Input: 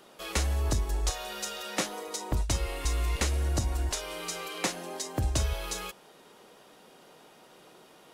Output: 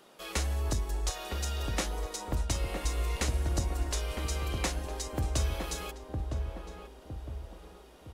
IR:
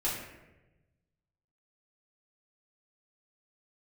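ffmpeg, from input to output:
-filter_complex "[0:a]asplit=2[link_01][link_02];[link_02]adelay=960,lowpass=frequency=830:poles=1,volume=-3dB,asplit=2[link_03][link_04];[link_04]adelay=960,lowpass=frequency=830:poles=1,volume=0.48,asplit=2[link_05][link_06];[link_06]adelay=960,lowpass=frequency=830:poles=1,volume=0.48,asplit=2[link_07][link_08];[link_08]adelay=960,lowpass=frequency=830:poles=1,volume=0.48,asplit=2[link_09][link_10];[link_10]adelay=960,lowpass=frequency=830:poles=1,volume=0.48,asplit=2[link_11][link_12];[link_12]adelay=960,lowpass=frequency=830:poles=1,volume=0.48[link_13];[link_01][link_03][link_05][link_07][link_09][link_11][link_13]amix=inputs=7:normalize=0,volume=-3dB"

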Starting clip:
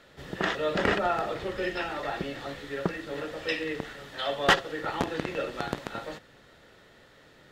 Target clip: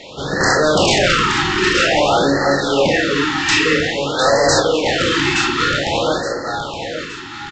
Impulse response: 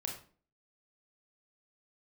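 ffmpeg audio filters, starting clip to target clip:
-filter_complex "[0:a]asplit=2[link_01][link_02];[link_02]aeval=exprs='(mod(28.2*val(0)+1,2)-1)/28.2':channel_layout=same,volume=-11dB[link_03];[link_01][link_03]amix=inputs=2:normalize=0,lowshelf=frequency=230:gain=-10,aresample=16000,aeval=exprs='0.299*sin(PI/2*7.08*val(0)/0.299)':channel_layout=same,aresample=44100,aecho=1:1:870|1740|2610|3480:0.398|0.155|0.0606|0.0236[link_04];[1:a]atrim=start_sample=2205,atrim=end_sample=3087[link_05];[link_04][link_05]afir=irnorm=-1:irlink=0,afftfilt=real='re*(1-between(b*sr/1024,530*pow(2900/530,0.5+0.5*sin(2*PI*0.51*pts/sr))/1.41,530*pow(2900/530,0.5+0.5*sin(2*PI*0.51*pts/sr))*1.41))':imag='im*(1-between(b*sr/1024,530*pow(2900/530,0.5+0.5*sin(2*PI*0.51*pts/sr))/1.41,530*pow(2900/530,0.5+0.5*sin(2*PI*0.51*pts/sr))*1.41))':win_size=1024:overlap=0.75,volume=1dB"

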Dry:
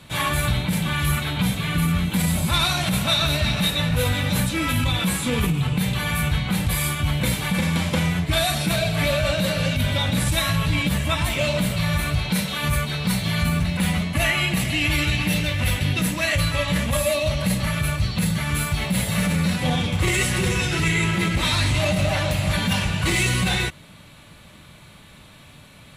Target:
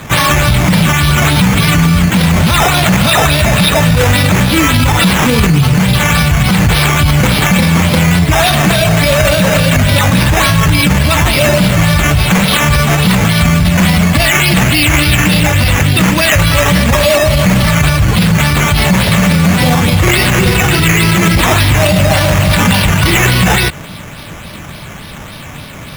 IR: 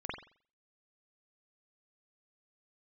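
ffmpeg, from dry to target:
-af "acrusher=samples=8:mix=1:aa=0.000001:lfo=1:lforange=4.8:lforate=3.5,alimiter=level_in=19.5dB:limit=-1dB:release=50:level=0:latency=1,volume=-1dB"

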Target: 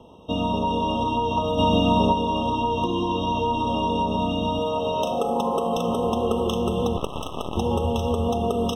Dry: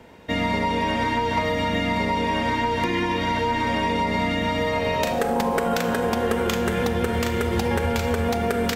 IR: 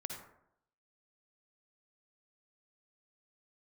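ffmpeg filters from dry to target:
-filter_complex "[0:a]asplit=3[link_01][link_02][link_03];[link_01]afade=type=out:start_time=1.57:duration=0.02[link_04];[link_02]acontrast=33,afade=type=in:start_time=1.57:duration=0.02,afade=type=out:start_time=2.12:duration=0.02[link_05];[link_03]afade=type=in:start_time=2.12:duration=0.02[link_06];[link_04][link_05][link_06]amix=inputs=3:normalize=0,asettb=1/sr,asplit=3[link_07][link_08][link_09];[link_07]atrim=end=4.594[link_10];[link_08]atrim=start=4.59:end=5.75,asetpts=PTS-STARTPTS,afade=type=in:duration=0.004:curve=qsin,afade=type=out:start_time=1.156:duration=0.004:curve=qsin,lowshelf=frequency=110:gain=-11.5[link_11];[link_09]atrim=start=5.746[link_12];[link_10][link_11]acrossfade=duration=0.004:curve1=hsin:curve2=qsin[link_13];[link_13][link_12]acrossfade=duration=0.004:curve1=qsin:curve2=hsin,asettb=1/sr,asplit=3[link_14][link_15][link_16];[link_14]atrim=end=6.974[link_17];[link_15]atrim=start=6.97:end=7.57,asetpts=PTS-STARTPTS,afade=type=in:duration=0.004:curve=qsin,afade=type=out:start_time=0.596:duration=0.004:curve=qsin,aeval=exprs='0.237*(cos(1*acos(clip(val(0)/0.237,-1,1)))-cos(1*PI/2))+0.0944*(cos(3*acos(clip(val(0)/0.237,-1,1)))-cos(3*PI/2))+0.0376*(cos(4*acos(clip(val(0)/0.237,-1,1)))-cos(4*PI/2))':channel_layout=same[link_18];[link_16]atrim=start=7.566[link_19];[link_17][link_18]acrossfade=duration=0.004:curve1=hsin:curve2=qsin[link_20];[link_20][link_19]acrossfade=duration=0.004:curve1=qsin:curve2=hsin,highshelf=frequency=9200:gain=-11.5,afftfilt=real='re*eq(mod(floor(b*sr/1024/1300),2),0)':imag='im*eq(mod(floor(b*sr/1024/1300),2),0)':win_size=1024:overlap=0.75"

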